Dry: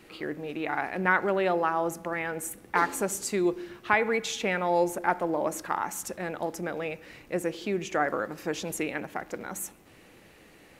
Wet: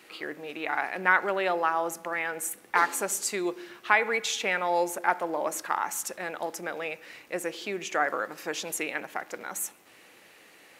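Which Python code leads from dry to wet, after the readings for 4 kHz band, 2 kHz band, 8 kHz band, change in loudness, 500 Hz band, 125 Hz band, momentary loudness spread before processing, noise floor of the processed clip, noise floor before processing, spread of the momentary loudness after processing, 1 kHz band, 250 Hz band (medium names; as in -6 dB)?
+3.5 dB, +2.5 dB, +3.5 dB, +0.5 dB, -2.5 dB, -10.5 dB, 11 LU, -55 dBFS, -55 dBFS, 12 LU, +1.0 dB, -6.0 dB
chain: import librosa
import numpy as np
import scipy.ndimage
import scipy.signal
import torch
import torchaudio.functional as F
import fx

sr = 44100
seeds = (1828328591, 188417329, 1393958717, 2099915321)

y = fx.highpass(x, sr, hz=840.0, slope=6)
y = y * librosa.db_to_amplitude(3.5)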